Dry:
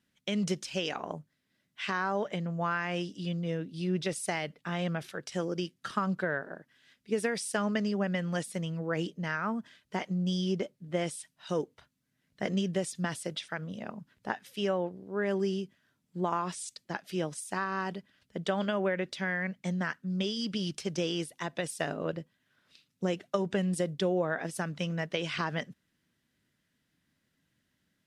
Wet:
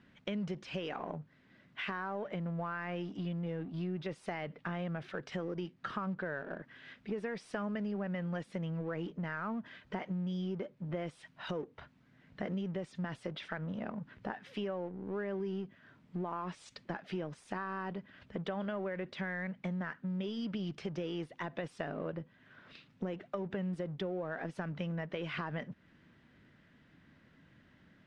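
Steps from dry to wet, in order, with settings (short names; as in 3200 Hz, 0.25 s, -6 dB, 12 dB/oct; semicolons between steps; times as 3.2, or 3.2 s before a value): G.711 law mismatch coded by mu; LPF 2200 Hz 12 dB/oct; in parallel at +2.5 dB: limiter -24.5 dBFS, peak gain reduction 10.5 dB; on the sum: compressor 3:1, threshold -37 dBFS, peak gain reduction 13.5 dB; gain -2 dB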